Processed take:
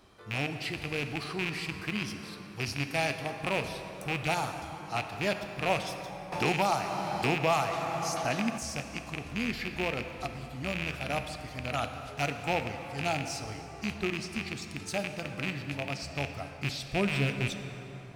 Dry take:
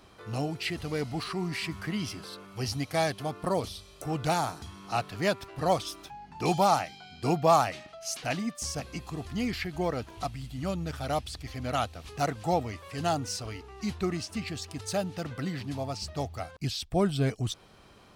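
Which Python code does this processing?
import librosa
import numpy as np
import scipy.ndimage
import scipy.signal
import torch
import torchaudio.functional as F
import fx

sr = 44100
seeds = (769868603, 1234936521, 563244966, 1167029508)

y = fx.rattle_buzz(x, sr, strikes_db=-32.0, level_db=-17.0)
y = fx.rev_plate(y, sr, seeds[0], rt60_s=4.0, hf_ratio=0.5, predelay_ms=0, drr_db=6.0)
y = fx.band_squash(y, sr, depth_pct=70, at=(6.32, 8.58))
y = y * librosa.db_to_amplitude(-4.0)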